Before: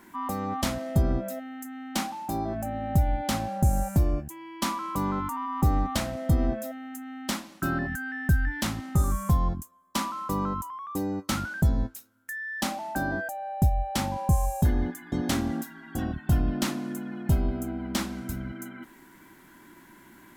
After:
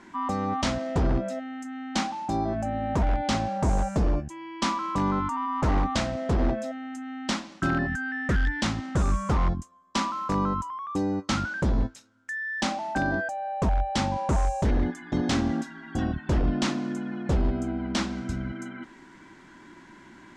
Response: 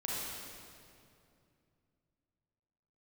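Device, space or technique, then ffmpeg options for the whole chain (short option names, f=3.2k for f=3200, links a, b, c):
synthesiser wavefolder: -af "aeval=exprs='0.1*(abs(mod(val(0)/0.1+3,4)-2)-1)':c=same,lowpass=f=6.8k:w=0.5412,lowpass=f=6.8k:w=1.3066,volume=3dB"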